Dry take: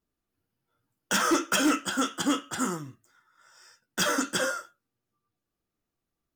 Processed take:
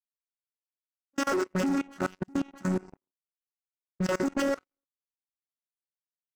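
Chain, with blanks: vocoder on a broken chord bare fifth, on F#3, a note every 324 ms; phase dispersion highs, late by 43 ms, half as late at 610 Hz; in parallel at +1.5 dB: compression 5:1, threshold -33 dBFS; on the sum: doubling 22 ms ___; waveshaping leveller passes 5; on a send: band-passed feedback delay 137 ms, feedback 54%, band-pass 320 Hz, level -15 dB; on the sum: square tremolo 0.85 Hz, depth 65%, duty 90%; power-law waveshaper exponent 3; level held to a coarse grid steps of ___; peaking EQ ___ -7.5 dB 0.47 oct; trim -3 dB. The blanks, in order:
-10.5 dB, 23 dB, 3.3 kHz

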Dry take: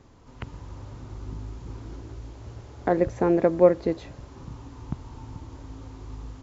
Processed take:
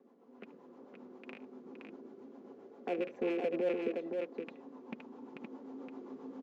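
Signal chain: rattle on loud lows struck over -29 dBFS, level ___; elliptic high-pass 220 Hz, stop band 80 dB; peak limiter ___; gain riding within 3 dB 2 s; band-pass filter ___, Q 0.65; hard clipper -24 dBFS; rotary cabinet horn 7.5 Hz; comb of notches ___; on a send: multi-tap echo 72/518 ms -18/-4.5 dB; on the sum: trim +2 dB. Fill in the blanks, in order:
-9 dBFS, -16 dBFS, 340 Hz, 310 Hz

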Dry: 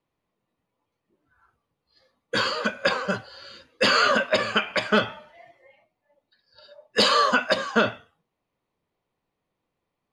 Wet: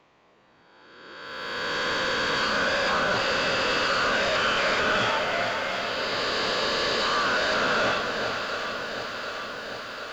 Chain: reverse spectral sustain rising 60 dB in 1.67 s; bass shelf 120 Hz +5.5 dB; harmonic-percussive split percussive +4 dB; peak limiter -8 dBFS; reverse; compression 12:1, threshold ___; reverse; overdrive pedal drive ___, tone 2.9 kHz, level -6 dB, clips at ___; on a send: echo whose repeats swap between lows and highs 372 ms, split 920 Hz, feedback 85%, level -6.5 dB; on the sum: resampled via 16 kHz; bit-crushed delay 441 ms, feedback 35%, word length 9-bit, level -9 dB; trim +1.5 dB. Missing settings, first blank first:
-29 dBFS, 24 dB, -20 dBFS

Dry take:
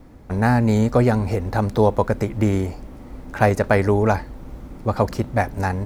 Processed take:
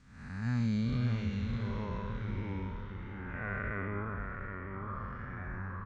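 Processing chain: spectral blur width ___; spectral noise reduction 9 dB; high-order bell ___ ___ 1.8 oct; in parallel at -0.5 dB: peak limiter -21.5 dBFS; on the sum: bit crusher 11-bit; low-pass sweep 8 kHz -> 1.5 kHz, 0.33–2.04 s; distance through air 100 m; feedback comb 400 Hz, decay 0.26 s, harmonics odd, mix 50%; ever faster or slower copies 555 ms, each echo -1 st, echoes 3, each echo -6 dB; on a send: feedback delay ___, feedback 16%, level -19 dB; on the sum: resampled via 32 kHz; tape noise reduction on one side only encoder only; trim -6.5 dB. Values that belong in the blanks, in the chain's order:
348 ms, 520 Hz, -15.5 dB, 882 ms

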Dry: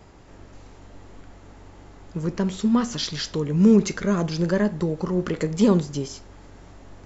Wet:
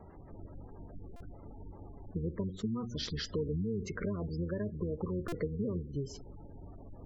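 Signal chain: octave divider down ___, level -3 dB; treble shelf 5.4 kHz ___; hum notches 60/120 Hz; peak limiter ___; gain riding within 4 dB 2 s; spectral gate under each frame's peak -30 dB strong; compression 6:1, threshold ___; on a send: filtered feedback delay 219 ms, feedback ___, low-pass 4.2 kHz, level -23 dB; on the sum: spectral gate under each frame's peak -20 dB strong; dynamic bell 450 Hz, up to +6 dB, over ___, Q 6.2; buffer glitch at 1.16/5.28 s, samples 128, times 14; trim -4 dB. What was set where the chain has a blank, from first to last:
1 oct, -9 dB, -11.5 dBFS, -29 dBFS, 40%, -54 dBFS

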